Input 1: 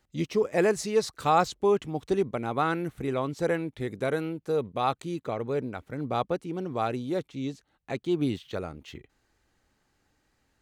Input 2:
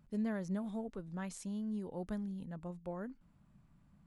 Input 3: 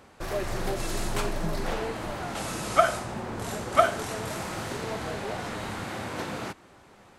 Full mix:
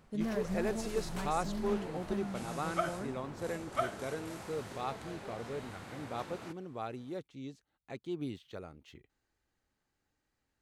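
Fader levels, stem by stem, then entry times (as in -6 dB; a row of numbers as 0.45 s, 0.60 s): -11.5 dB, +0.5 dB, -13.0 dB; 0.00 s, 0.00 s, 0.00 s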